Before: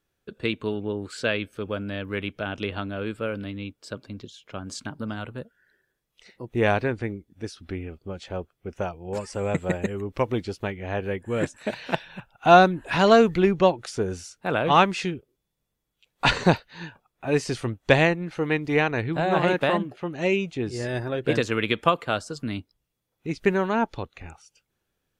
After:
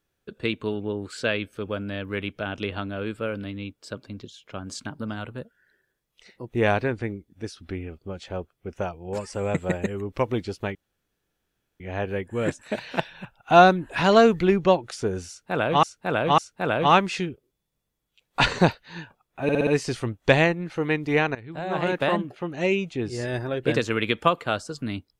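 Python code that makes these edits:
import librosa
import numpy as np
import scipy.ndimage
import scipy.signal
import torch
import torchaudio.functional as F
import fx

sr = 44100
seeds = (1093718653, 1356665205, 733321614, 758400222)

y = fx.edit(x, sr, fx.insert_room_tone(at_s=10.75, length_s=1.05),
    fx.repeat(start_s=14.23, length_s=0.55, count=3),
    fx.stutter(start_s=17.28, slice_s=0.06, count=5),
    fx.fade_in_from(start_s=18.96, length_s=0.79, floor_db=-19.0), tone=tone)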